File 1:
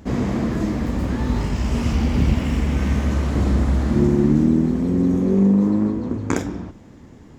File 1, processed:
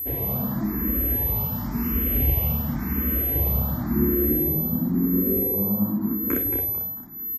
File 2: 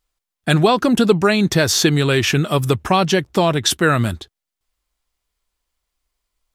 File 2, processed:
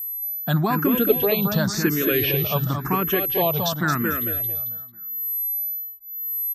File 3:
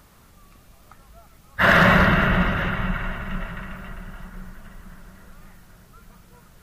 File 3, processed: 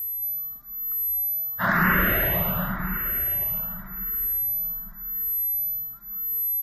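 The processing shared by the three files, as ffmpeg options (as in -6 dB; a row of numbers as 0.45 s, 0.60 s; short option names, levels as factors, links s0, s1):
-filter_complex "[0:a]aemphasis=mode=reproduction:type=50kf,aeval=exprs='val(0)+0.0708*sin(2*PI*12000*n/s)':c=same,asplit=2[s0][s1];[s1]aecho=0:1:223|446|669|892|1115:0.562|0.208|0.077|0.0285|0.0105[s2];[s0][s2]amix=inputs=2:normalize=0,asplit=2[s3][s4];[s4]afreqshift=0.93[s5];[s3][s5]amix=inputs=2:normalize=1,volume=0.631"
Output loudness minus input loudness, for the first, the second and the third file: -3.0 LU, -5.5 LU, -4.5 LU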